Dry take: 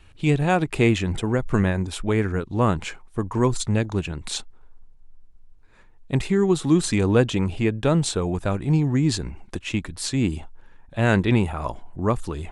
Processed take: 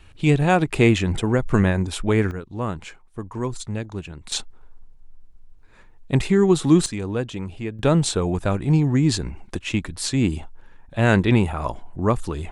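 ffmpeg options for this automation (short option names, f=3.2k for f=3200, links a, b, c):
-af "asetnsamples=n=441:p=0,asendcmd='2.31 volume volume -6.5dB;4.32 volume volume 3dB;6.86 volume volume -7.5dB;7.79 volume volume 2dB',volume=2.5dB"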